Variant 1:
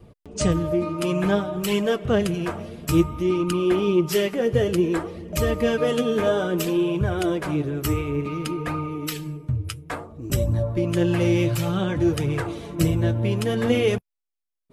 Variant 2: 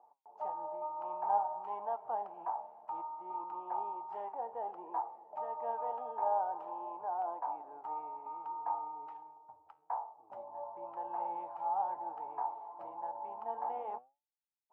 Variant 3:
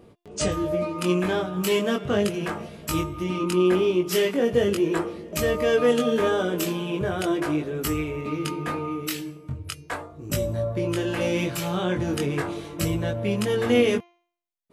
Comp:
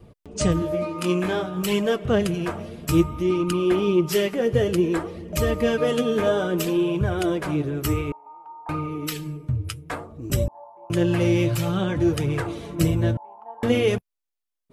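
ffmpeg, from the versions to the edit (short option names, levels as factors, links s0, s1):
-filter_complex "[1:a]asplit=3[s0][s1][s2];[0:a]asplit=5[s3][s4][s5][s6][s7];[s3]atrim=end=0.622[s8];[2:a]atrim=start=0.618:end=1.632[s9];[s4]atrim=start=1.628:end=8.122[s10];[s0]atrim=start=8.118:end=8.692[s11];[s5]atrim=start=8.688:end=10.482[s12];[s1]atrim=start=10.478:end=10.902[s13];[s6]atrim=start=10.898:end=13.172[s14];[s2]atrim=start=13.168:end=13.632[s15];[s7]atrim=start=13.628[s16];[s8][s9]acrossfade=d=0.004:c1=hsin:c2=hsin[s17];[s17][s10]acrossfade=d=0.004:c1=hsin:c2=hsin[s18];[s18][s11]acrossfade=d=0.004:c1=hsin:c2=hsin[s19];[s19][s12]acrossfade=d=0.004:c1=hsin:c2=hsin[s20];[s20][s13]acrossfade=d=0.004:c1=hsin:c2=hsin[s21];[s21][s14]acrossfade=d=0.004:c1=hsin:c2=hsin[s22];[s22][s15]acrossfade=d=0.004:c1=hsin:c2=hsin[s23];[s23][s16]acrossfade=d=0.004:c1=hsin:c2=hsin"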